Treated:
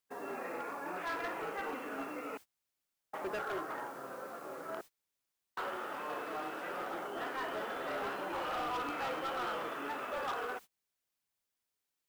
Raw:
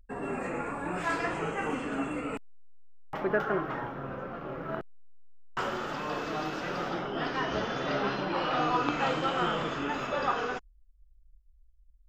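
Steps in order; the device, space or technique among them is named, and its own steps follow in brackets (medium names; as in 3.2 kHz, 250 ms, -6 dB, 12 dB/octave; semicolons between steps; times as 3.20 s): aircraft radio (band-pass 380–2500 Hz; hard clipper -29 dBFS, distortion -11 dB; white noise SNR 21 dB; gate -44 dBFS, range -26 dB); trim -4.5 dB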